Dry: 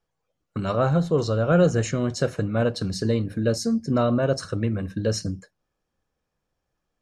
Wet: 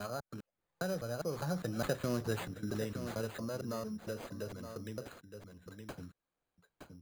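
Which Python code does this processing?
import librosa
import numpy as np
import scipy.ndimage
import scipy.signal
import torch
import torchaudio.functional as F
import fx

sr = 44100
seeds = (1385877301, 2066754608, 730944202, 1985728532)

p1 = fx.block_reorder(x, sr, ms=215.0, group=4)
p2 = fx.doppler_pass(p1, sr, speed_mps=20, closest_m=4.4, pass_at_s=2.09)
p3 = fx.low_shelf(p2, sr, hz=390.0, db=-6.0)
p4 = np.repeat(p3[::8], 8)[:len(p3)]
p5 = p4 + fx.echo_single(p4, sr, ms=918, db=-15.0, dry=0)
p6 = fx.band_squash(p5, sr, depth_pct=70)
y = p6 * librosa.db_to_amplitude(-1.0)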